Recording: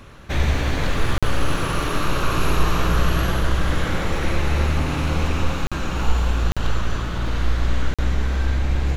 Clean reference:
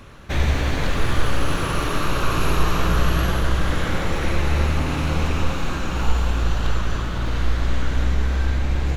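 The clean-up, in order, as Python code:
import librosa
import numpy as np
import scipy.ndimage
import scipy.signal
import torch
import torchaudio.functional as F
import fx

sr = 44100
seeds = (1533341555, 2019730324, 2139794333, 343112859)

y = fx.fix_interpolate(x, sr, at_s=(1.18, 5.67, 6.52, 7.94), length_ms=46.0)
y = fx.fix_echo_inverse(y, sr, delay_ms=134, level_db=-17.5)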